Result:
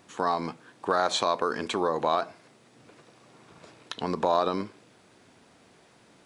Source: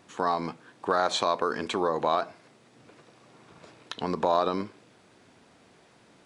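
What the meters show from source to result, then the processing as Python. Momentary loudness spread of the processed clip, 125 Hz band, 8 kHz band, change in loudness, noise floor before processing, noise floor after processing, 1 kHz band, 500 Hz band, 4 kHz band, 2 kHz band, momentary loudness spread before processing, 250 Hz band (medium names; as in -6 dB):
13 LU, 0.0 dB, +2.0 dB, 0.0 dB, -59 dBFS, -59 dBFS, 0.0 dB, 0.0 dB, +1.0 dB, 0.0 dB, 13 LU, 0.0 dB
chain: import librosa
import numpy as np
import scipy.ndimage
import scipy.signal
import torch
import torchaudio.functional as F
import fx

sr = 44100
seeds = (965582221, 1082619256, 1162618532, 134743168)

y = fx.high_shelf(x, sr, hz=7800.0, db=4.5)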